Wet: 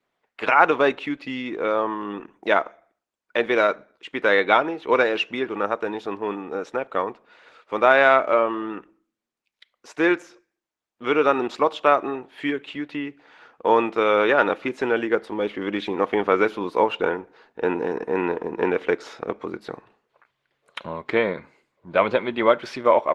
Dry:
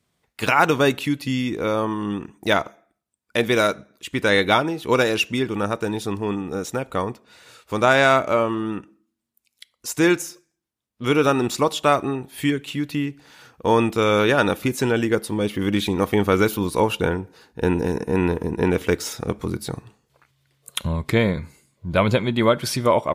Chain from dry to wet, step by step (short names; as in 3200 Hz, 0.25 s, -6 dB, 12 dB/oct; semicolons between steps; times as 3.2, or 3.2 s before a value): BPF 400–2400 Hz; gain +2 dB; Opus 16 kbps 48000 Hz